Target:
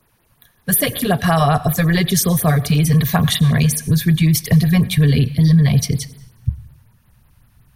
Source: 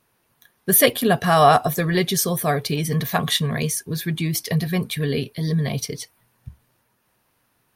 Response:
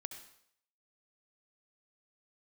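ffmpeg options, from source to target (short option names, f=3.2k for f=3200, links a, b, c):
-filter_complex "[0:a]lowshelf=f=110:g=9,acrossover=split=110|270[a][b][c];[a]acompressor=threshold=-42dB:ratio=4[d];[b]acompressor=threshold=-28dB:ratio=4[e];[c]acompressor=threshold=-19dB:ratio=4[f];[d][e][f]amix=inputs=3:normalize=0,asplit=2[g][h];[1:a]atrim=start_sample=2205,asetrate=33075,aresample=44100[i];[h][i]afir=irnorm=-1:irlink=0,volume=-7dB[j];[g][j]amix=inputs=2:normalize=0,asubboost=boost=6.5:cutoff=150,afftfilt=real='re*(1-between(b*sr/1024,300*pow(7500/300,0.5+0.5*sin(2*PI*5.4*pts/sr))/1.41,300*pow(7500/300,0.5+0.5*sin(2*PI*5.4*pts/sr))*1.41))':imag='im*(1-between(b*sr/1024,300*pow(7500/300,0.5+0.5*sin(2*PI*5.4*pts/sr))/1.41,300*pow(7500/300,0.5+0.5*sin(2*PI*5.4*pts/sr))*1.41))':win_size=1024:overlap=0.75,volume=3dB"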